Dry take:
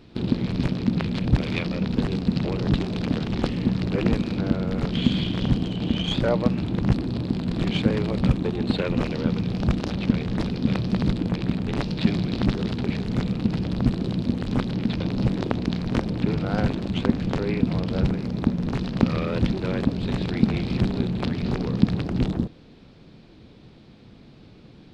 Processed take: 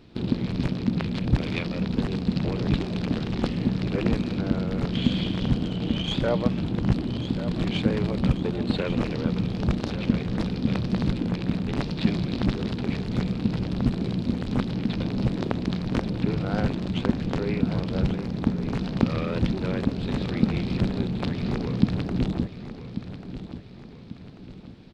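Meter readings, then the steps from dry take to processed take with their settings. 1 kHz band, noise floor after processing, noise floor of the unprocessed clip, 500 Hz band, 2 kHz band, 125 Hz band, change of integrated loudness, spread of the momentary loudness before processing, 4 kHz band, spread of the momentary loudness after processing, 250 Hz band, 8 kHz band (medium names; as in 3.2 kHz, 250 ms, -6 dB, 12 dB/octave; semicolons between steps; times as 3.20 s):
-1.5 dB, -42 dBFS, -49 dBFS, -1.5 dB, -1.5 dB, -1.5 dB, -2.0 dB, 3 LU, -1.5 dB, 4 LU, -1.5 dB, no reading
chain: feedback delay 1140 ms, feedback 44%, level -12 dB; trim -2 dB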